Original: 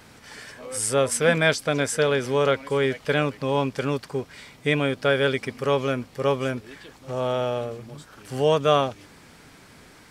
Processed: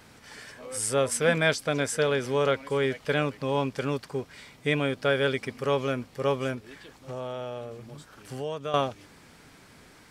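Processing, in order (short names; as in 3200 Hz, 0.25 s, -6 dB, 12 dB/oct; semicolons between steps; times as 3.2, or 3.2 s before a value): 6.54–8.74 compressor 2.5:1, threshold -31 dBFS, peak gain reduction 12 dB; gain -3.5 dB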